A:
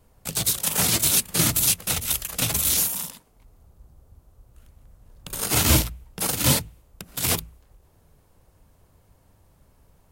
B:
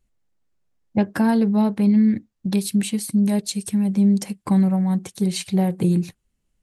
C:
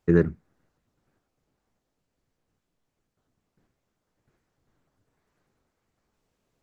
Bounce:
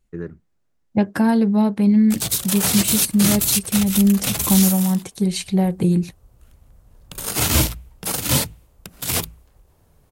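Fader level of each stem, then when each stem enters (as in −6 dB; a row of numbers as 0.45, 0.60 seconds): +1.0, +1.5, −11.5 decibels; 1.85, 0.00, 0.05 seconds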